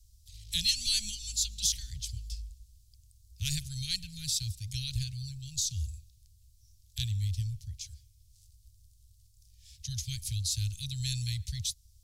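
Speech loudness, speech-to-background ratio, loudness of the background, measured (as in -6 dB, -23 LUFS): -33.0 LUFS, 16.5 dB, -49.5 LUFS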